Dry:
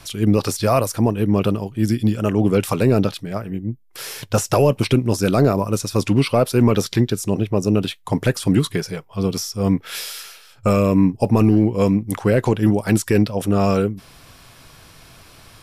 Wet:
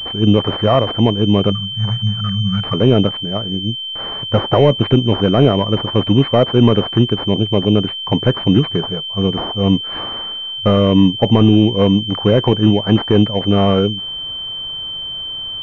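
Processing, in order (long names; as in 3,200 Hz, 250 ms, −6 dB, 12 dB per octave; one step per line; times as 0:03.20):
time-frequency box erased 0:01.52–0:02.73, 210–1,100 Hz
switching amplifier with a slow clock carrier 3,100 Hz
level +4 dB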